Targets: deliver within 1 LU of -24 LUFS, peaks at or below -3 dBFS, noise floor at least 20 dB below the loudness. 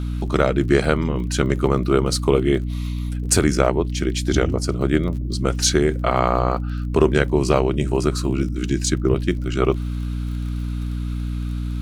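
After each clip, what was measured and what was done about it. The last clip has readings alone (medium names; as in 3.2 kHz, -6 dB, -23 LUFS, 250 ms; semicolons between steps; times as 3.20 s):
tick rate 28 per s; hum 60 Hz; highest harmonic 300 Hz; hum level -22 dBFS; loudness -21.0 LUFS; peak level -2.5 dBFS; loudness target -24.0 LUFS
-> de-click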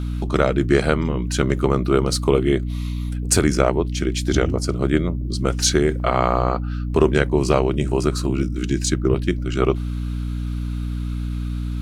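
tick rate 0 per s; hum 60 Hz; highest harmonic 300 Hz; hum level -22 dBFS
-> hum notches 60/120/180/240/300 Hz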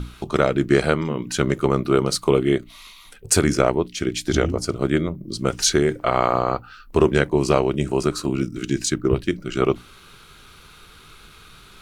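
hum not found; loudness -21.5 LUFS; peak level -2.5 dBFS; loudness target -24.0 LUFS
-> trim -2.5 dB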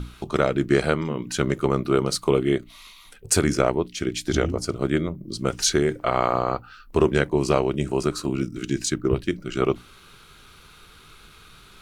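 loudness -24.0 LUFS; peak level -5.0 dBFS; noise floor -50 dBFS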